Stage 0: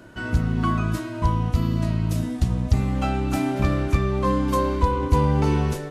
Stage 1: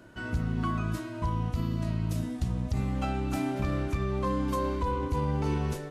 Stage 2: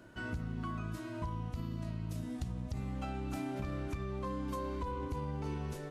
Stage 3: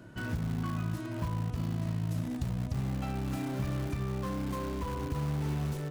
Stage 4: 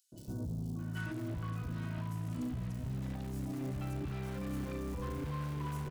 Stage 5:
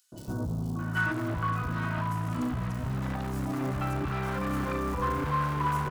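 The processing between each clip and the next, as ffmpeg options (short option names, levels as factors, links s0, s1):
-af "alimiter=limit=0.211:level=0:latency=1:release=46,volume=0.473"
-af "acompressor=threshold=0.0282:ratio=6,volume=0.668"
-filter_complex "[0:a]equalizer=f=140:t=o:w=1.3:g=9,asplit=2[s0][s1];[s1]aeval=exprs='(mod(39.8*val(0)+1,2)-1)/39.8':c=same,volume=0.299[s2];[s0][s2]amix=inputs=2:normalize=0"
-filter_complex "[0:a]alimiter=level_in=2.24:limit=0.0631:level=0:latency=1,volume=0.447,acrossover=split=730|4700[s0][s1][s2];[s0]adelay=120[s3];[s1]adelay=790[s4];[s3][s4][s2]amix=inputs=3:normalize=0"
-af "equalizer=f=1200:t=o:w=1.6:g=12.5,volume=2"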